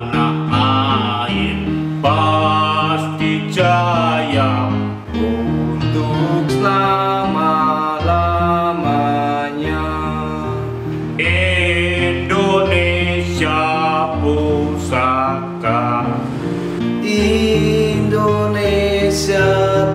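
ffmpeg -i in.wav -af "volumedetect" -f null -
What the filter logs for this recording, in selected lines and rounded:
mean_volume: -15.8 dB
max_volume: -1.7 dB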